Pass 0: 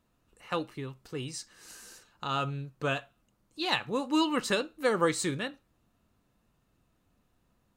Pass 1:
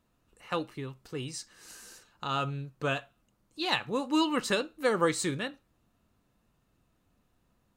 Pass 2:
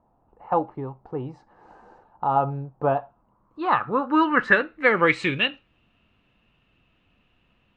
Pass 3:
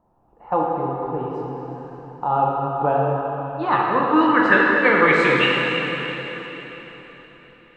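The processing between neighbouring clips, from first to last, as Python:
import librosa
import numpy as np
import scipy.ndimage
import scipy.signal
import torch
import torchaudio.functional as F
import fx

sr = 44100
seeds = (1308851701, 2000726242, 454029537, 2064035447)

y1 = x
y2 = fx.filter_sweep_lowpass(y1, sr, from_hz=830.0, to_hz=2800.0, start_s=2.96, end_s=5.46, q=5.5)
y2 = y2 * 10.0 ** (5.0 / 20.0)
y3 = fx.rev_plate(y2, sr, seeds[0], rt60_s=4.2, hf_ratio=0.9, predelay_ms=0, drr_db=-3.5)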